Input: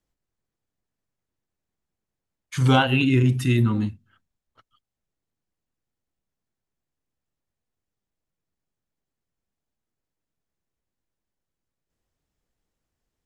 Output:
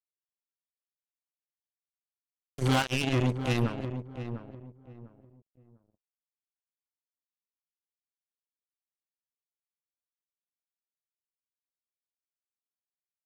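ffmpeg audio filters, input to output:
-filter_complex "[0:a]acrusher=bits=2:mix=0:aa=0.5,asplit=2[a][b];[b]adelay=699,lowpass=f=1.1k:p=1,volume=-9dB,asplit=2[c][d];[d]adelay=699,lowpass=f=1.1k:p=1,volume=0.27,asplit=2[e][f];[f]adelay=699,lowpass=f=1.1k:p=1,volume=0.27[g];[a][c][e][g]amix=inputs=4:normalize=0,volume=-8.5dB"

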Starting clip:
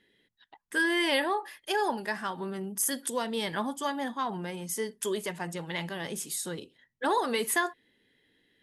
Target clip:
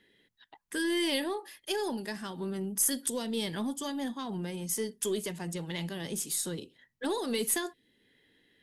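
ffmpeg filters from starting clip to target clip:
-filter_complex "[0:a]acrossover=split=440|3000[a][b][c];[b]acompressor=threshold=-55dB:ratio=2[d];[a][d][c]amix=inputs=3:normalize=0,aeval=exprs='0.168*(cos(1*acos(clip(val(0)/0.168,-1,1)))-cos(1*PI/2))+0.00266*(cos(6*acos(clip(val(0)/0.168,-1,1)))-cos(6*PI/2))+0.00596*(cos(7*acos(clip(val(0)/0.168,-1,1)))-cos(7*PI/2))':c=same,asplit=2[e][f];[f]volume=32dB,asoftclip=hard,volume=-32dB,volume=-4dB[g];[e][g]amix=inputs=2:normalize=0"

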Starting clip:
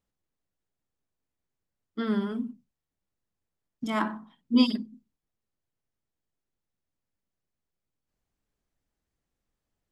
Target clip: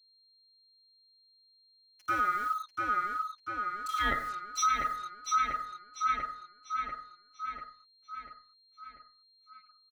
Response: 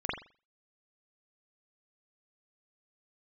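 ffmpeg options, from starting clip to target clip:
-filter_complex "[0:a]afftfilt=real='real(if(lt(b,960),b+48*(1-2*mod(floor(b/48),2)),b),0)':imag='imag(if(lt(b,960),b+48*(1-2*mod(floor(b/48),2)),b),0)':win_size=2048:overlap=0.75,acrossover=split=4200[a][b];[a]adelay=110[c];[c][b]amix=inputs=2:normalize=0,acrusher=bits=7:mix=0:aa=0.5,asplit=2[d][e];[e]adelay=692,lowpass=f=4.9k:p=1,volume=-3.5dB,asplit=2[f][g];[g]adelay=692,lowpass=f=4.9k:p=1,volume=0.53,asplit=2[h][i];[i]adelay=692,lowpass=f=4.9k:p=1,volume=0.53,asplit=2[j][k];[k]adelay=692,lowpass=f=4.9k:p=1,volume=0.53,asplit=2[l][m];[m]adelay=692,lowpass=f=4.9k:p=1,volume=0.53,asplit=2[n][o];[o]adelay=692,lowpass=f=4.9k:p=1,volume=0.53,asplit=2[p][q];[q]adelay=692,lowpass=f=4.9k:p=1,volume=0.53[r];[f][h][j][l][n][p][r]amix=inputs=7:normalize=0[s];[d][s]amix=inputs=2:normalize=0,alimiter=limit=-20dB:level=0:latency=1:release=398,asplit=2[t][u];[u]acompressor=threshold=-38dB:ratio=6,volume=0dB[v];[t][v]amix=inputs=2:normalize=0,aeval=exprs='val(0)+0.000708*sin(2*PI*4200*n/s)':c=same,equalizer=f=3.4k:t=o:w=2.4:g=5,volume=-4dB"

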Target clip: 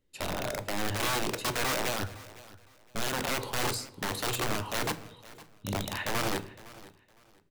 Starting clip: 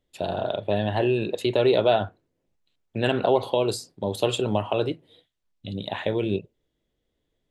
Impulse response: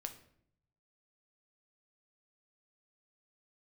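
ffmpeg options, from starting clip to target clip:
-filter_complex "[0:a]equalizer=f=700:w=4.4:g=-12,bandreject=f=3.4k:w=7.5,alimiter=limit=-19dB:level=0:latency=1:release=135,aeval=exprs='(mod(17.8*val(0)+1,2)-1)/17.8':c=same,aecho=1:1:510|1020:0.112|0.0281,asplit=2[a][b];[1:a]atrim=start_sample=2205[c];[b][c]afir=irnorm=-1:irlink=0,volume=4dB[d];[a][d]amix=inputs=2:normalize=0,volume=-6dB"

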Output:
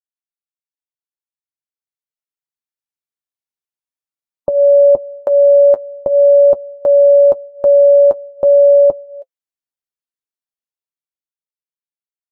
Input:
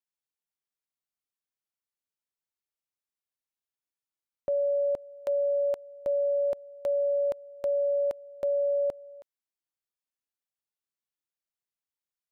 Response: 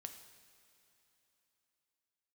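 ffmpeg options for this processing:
-af "afftdn=nr=20:nf=-46,dynaudnorm=f=360:g=11:m=13.5dB,flanger=delay=6.2:depth=2.7:regen=-41:speed=0.44:shape=triangular,volume=8dB"

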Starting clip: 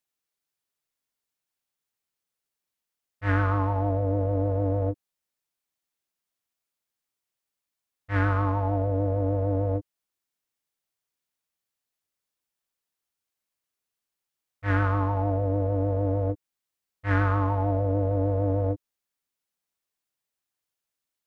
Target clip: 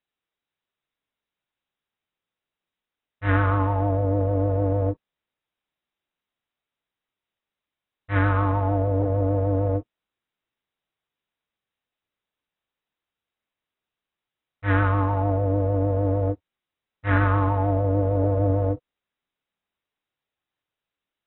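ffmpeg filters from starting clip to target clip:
-af "volume=3dB" -ar 24000 -c:a aac -b:a 16k

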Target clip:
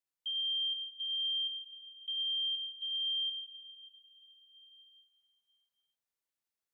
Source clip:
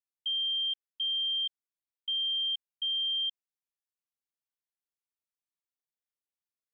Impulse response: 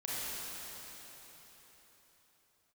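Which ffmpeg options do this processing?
-filter_complex "[0:a]alimiter=level_in=10.5dB:limit=-24dB:level=0:latency=1,volume=-10.5dB,asplit=2[a][b];[1:a]atrim=start_sample=2205,adelay=6[c];[b][c]afir=irnorm=-1:irlink=0,volume=-7dB[d];[a][d]amix=inputs=2:normalize=0"

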